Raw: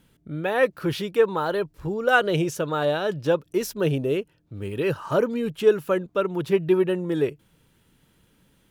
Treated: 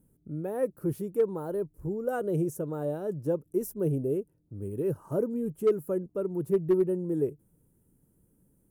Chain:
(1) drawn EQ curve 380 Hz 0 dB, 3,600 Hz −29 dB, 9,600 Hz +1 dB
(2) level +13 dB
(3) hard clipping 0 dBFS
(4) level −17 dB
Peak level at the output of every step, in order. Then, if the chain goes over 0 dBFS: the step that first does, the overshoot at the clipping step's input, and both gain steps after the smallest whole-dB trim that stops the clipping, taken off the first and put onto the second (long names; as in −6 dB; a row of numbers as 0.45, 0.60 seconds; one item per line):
−9.0, +4.0, 0.0, −17.0 dBFS
step 2, 4.0 dB
step 2 +9 dB, step 4 −13 dB